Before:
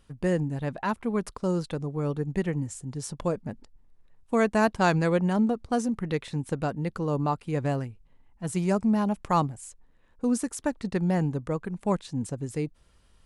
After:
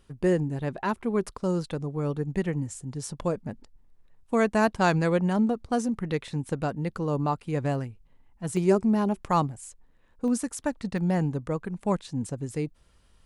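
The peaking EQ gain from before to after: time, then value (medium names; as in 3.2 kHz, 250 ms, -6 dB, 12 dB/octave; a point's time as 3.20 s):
peaking EQ 380 Hz 0.23 oct
+7.5 dB
from 1.24 s 0 dB
from 8.57 s +10 dB
from 9.20 s 0 dB
from 10.28 s -9.5 dB
from 10.98 s -0.5 dB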